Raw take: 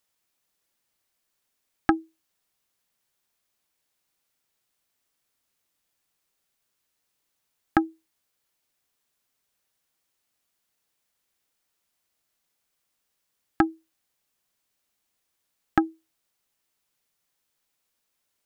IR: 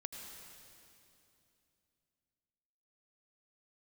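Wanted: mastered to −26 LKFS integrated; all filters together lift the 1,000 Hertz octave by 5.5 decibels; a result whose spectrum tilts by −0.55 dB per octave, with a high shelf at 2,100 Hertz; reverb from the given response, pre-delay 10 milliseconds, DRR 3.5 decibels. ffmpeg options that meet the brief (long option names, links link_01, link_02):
-filter_complex "[0:a]equalizer=frequency=1000:width_type=o:gain=6.5,highshelf=frequency=2100:gain=5.5,asplit=2[link_01][link_02];[1:a]atrim=start_sample=2205,adelay=10[link_03];[link_02][link_03]afir=irnorm=-1:irlink=0,volume=-1dB[link_04];[link_01][link_04]amix=inputs=2:normalize=0"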